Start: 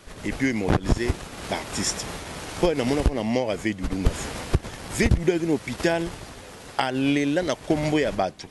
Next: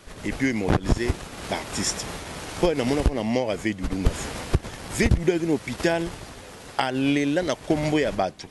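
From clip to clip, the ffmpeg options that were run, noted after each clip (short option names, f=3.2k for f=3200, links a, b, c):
-af anull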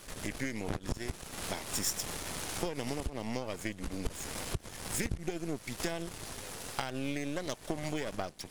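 -af "aeval=exprs='if(lt(val(0),0),0.251*val(0),val(0))':c=same,acompressor=threshold=-37dB:ratio=2.5,crystalizer=i=1.5:c=0"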